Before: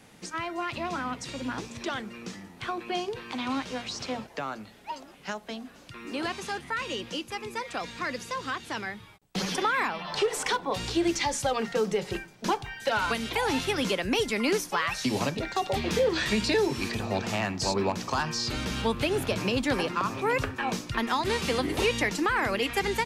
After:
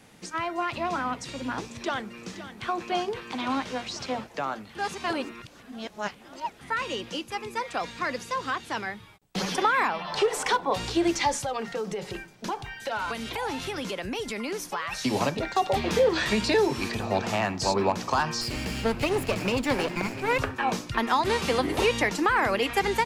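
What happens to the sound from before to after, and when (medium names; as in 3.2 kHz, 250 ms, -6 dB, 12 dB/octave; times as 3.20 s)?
1.65–2.68 s: echo throw 520 ms, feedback 80%, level -10 dB
4.75–6.61 s: reverse
11.38–14.93 s: compression 5:1, threshold -30 dBFS
18.41–20.39 s: comb filter that takes the minimum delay 0.4 ms
whole clip: dynamic bell 810 Hz, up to +5 dB, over -38 dBFS, Q 0.74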